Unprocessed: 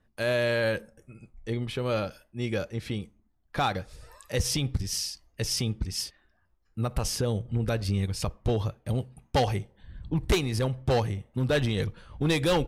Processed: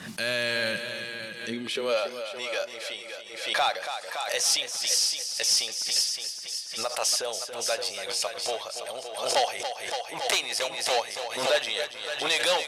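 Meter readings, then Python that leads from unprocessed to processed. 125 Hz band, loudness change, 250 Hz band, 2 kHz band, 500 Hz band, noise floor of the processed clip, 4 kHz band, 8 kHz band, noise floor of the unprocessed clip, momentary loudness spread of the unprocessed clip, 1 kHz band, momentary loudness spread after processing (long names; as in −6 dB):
below −20 dB, +2.0 dB, −11.0 dB, +5.0 dB, −0.5 dB, −41 dBFS, +8.5 dB, +9.0 dB, −69 dBFS, 10 LU, +3.5 dB, 11 LU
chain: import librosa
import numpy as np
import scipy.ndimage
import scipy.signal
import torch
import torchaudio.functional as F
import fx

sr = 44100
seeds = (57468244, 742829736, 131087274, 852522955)

y = x + 10.0 ** (-10.0 / 20.0) * np.pad(x, (int(568 * sr / 1000.0), 0))[:len(x)]
y = fx.filter_sweep_highpass(y, sr, from_hz=170.0, to_hz=620.0, start_s=1.39, end_s=2.02, q=3.6)
y = fx.tilt_shelf(y, sr, db=-10.0, hz=1300.0)
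y = fx.echo_feedback(y, sr, ms=281, feedback_pct=45, wet_db=-10.5)
y = 10.0 ** (-14.5 / 20.0) * np.tanh(y / 10.0 ** (-14.5 / 20.0))
y = scipy.signal.sosfilt(scipy.signal.butter(2, 9900.0, 'lowpass', fs=sr, output='sos'), y)
y = fx.pre_swell(y, sr, db_per_s=67.0)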